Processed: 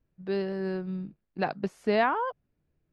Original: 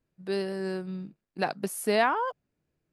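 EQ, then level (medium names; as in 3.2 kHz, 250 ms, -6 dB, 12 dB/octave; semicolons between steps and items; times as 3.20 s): distance through air 180 m; bass shelf 91 Hz +11.5 dB; 0.0 dB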